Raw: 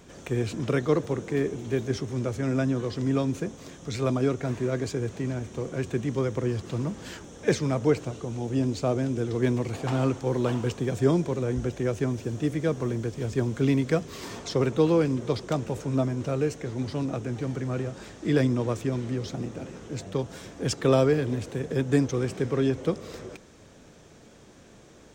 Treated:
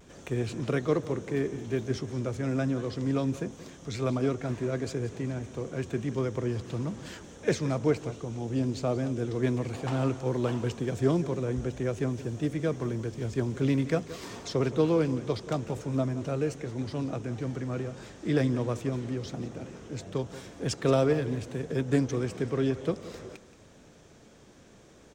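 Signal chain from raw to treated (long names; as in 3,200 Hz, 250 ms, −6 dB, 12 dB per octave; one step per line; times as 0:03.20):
single-tap delay 177 ms −15.5 dB
pitch vibrato 0.44 Hz 19 cents
highs frequency-modulated by the lows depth 0.13 ms
level −3 dB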